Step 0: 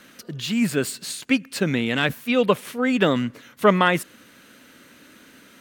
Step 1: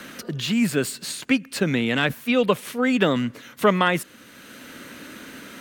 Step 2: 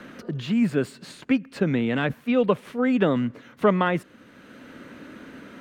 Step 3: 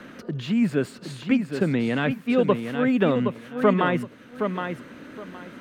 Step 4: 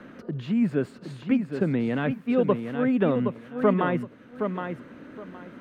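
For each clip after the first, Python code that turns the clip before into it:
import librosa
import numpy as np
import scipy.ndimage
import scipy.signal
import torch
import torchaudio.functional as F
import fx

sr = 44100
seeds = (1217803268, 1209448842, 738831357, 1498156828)

y1 = fx.band_squash(x, sr, depth_pct=40)
y2 = fx.lowpass(y1, sr, hz=1100.0, slope=6)
y3 = fx.echo_feedback(y2, sr, ms=768, feedback_pct=21, wet_db=-7)
y4 = fx.high_shelf(y3, sr, hz=2500.0, db=-11.5)
y4 = y4 * 10.0 ** (-1.5 / 20.0)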